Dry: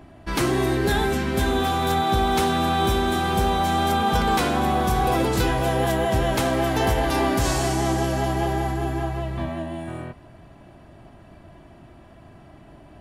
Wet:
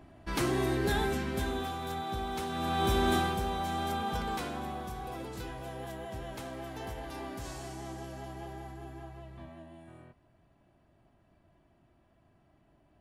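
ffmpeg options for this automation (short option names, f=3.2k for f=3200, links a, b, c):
-af "volume=3dB,afade=t=out:st=1.03:d=0.75:silence=0.446684,afade=t=in:st=2.49:d=0.66:silence=0.281838,afade=t=out:st=3.15:d=0.22:silence=0.398107,afade=t=out:st=3.93:d=1.04:silence=0.421697"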